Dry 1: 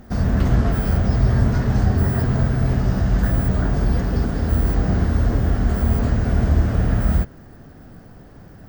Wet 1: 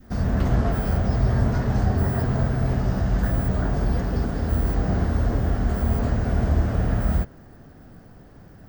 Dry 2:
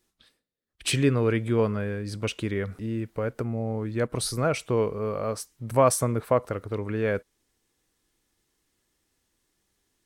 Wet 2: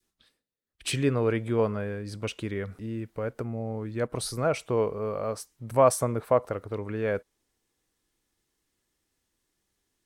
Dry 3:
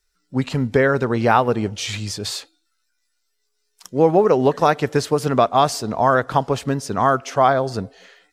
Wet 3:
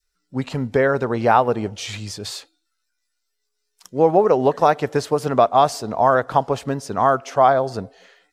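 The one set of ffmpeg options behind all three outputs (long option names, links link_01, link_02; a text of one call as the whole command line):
ffmpeg -i in.wav -af "adynamicequalizer=threshold=0.0316:dfrequency=710:dqfactor=0.93:tfrequency=710:tqfactor=0.93:attack=5:release=100:ratio=0.375:range=3:mode=boostabove:tftype=bell,volume=-4dB" out.wav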